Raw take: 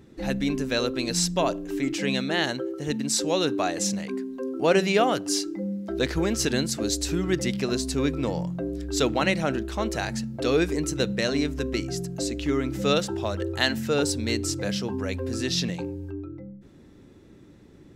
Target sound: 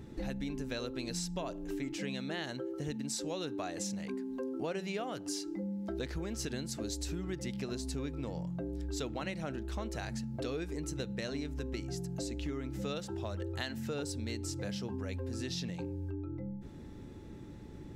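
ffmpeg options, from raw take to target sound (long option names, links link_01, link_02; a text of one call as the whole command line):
ffmpeg -i in.wav -af "lowshelf=frequency=130:gain=8.5,acompressor=threshold=-36dB:ratio=6,aeval=exprs='val(0)+0.000447*sin(2*PI*860*n/s)':channel_layout=same" out.wav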